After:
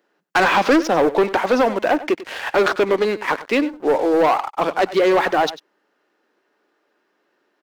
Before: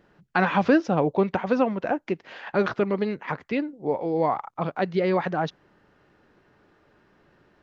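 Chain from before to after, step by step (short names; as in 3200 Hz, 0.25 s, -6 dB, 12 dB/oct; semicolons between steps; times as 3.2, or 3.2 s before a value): HPF 280 Hz 24 dB/oct; high shelf 5100 Hz +9 dB; sample leveller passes 3; on a send: echo 96 ms -16 dB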